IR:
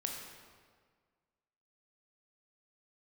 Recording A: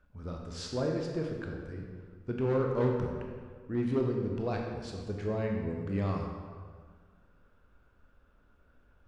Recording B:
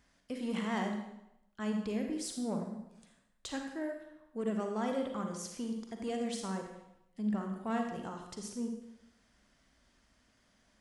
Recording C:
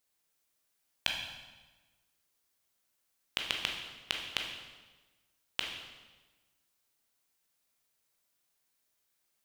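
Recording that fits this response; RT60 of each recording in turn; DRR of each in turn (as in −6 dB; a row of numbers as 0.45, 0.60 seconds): A; 1.7, 0.85, 1.2 seconds; 0.5, 3.0, 0.5 decibels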